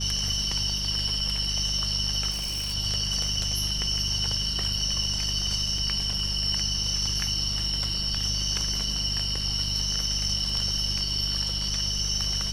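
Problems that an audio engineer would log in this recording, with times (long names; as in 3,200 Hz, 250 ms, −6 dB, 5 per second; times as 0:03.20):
surface crackle 14 per second −35 dBFS
mains hum 50 Hz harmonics 4 −33 dBFS
0:02.30–0:02.75: clipping −27 dBFS
0:05.78: drop-out 2.3 ms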